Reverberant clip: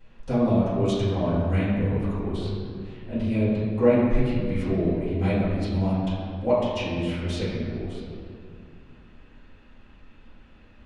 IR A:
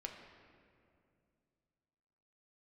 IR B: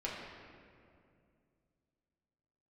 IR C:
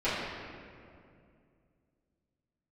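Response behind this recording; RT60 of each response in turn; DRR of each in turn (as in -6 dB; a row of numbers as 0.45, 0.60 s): C; 2.4, 2.4, 2.4 s; 1.5, -6.0, -15.0 dB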